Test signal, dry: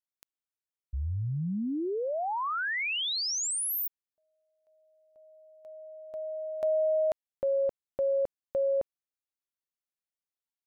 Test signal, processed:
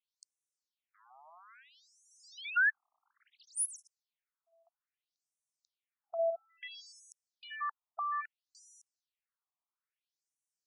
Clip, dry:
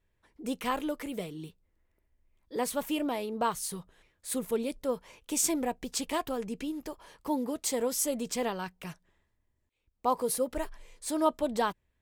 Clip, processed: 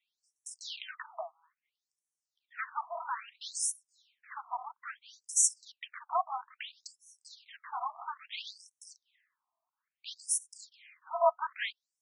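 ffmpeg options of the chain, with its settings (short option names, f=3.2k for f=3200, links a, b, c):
-af "afreqshift=37,aeval=exprs='clip(val(0),-1,0.0211)':c=same,afftfilt=real='re*between(b*sr/1024,890*pow(7900/890,0.5+0.5*sin(2*PI*0.6*pts/sr))/1.41,890*pow(7900/890,0.5+0.5*sin(2*PI*0.6*pts/sr))*1.41)':imag='im*between(b*sr/1024,890*pow(7900/890,0.5+0.5*sin(2*PI*0.6*pts/sr))/1.41,890*pow(7900/890,0.5+0.5*sin(2*PI*0.6*pts/sr))*1.41)':win_size=1024:overlap=0.75,volume=7dB"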